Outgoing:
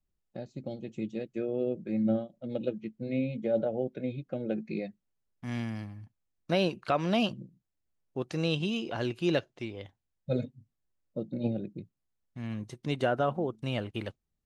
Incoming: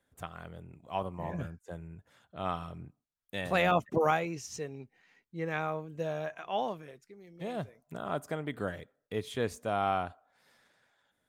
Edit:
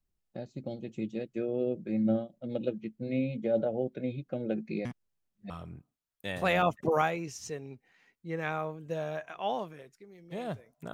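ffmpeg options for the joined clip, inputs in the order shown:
ffmpeg -i cue0.wav -i cue1.wav -filter_complex "[0:a]apad=whole_dur=10.93,atrim=end=10.93,asplit=2[link_01][link_02];[link_01]atrim=end=4.852[link_03];[link_02]atrim=start=4.848:end=5.502,asetpts=PTS-STARTPTS,areverse[link_04];[1:a]atrim=start=2.588:end=8.02[link_05];[link_03][link_04]acrossfade=duration=0.004:curve1=hsin:curve2=hsin[link_06];[link_06][link_05]acrossfade=duration=0.004:curve1=hsin:curve2=hsin" out.wav

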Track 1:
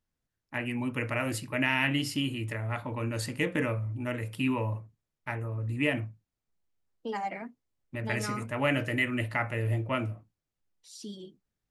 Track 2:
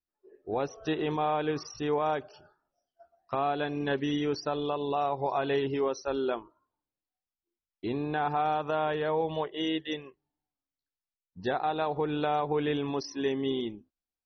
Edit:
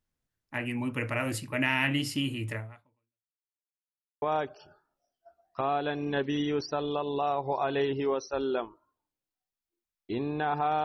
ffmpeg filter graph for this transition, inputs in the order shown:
ffmpeg -i cue0.wav -i cue1.wav -filter_complex "[0:a]apad=whole_dur=10.84,atrim=end=10.84,asplit=2[link_01][link_02];[link_01]atrim=end=3.44,asetpts=PTS-STARTPTS,afade=type=out:start_time=2.58:duration=0.86:curve=exp[link_03];[link_02]atrim=start=3.44:end=4.22,asetpts=PTS-STARTPTS,volume=0[link_04];[1:a]atrim=start=1.96:end=8.58,asetpts=PTS-STARTPTS,afade=type=in:duration=0.004:curve=hsin[link_05];[link_03][link_04][link_05]concat=n=3:v=0:a=1" out.wav

